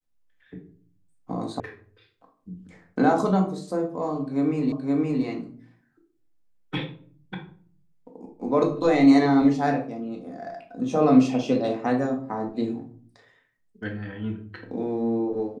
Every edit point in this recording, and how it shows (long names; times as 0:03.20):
0:01.60: cut off before it has died away
0:04.72: the same again, the last 0.52 s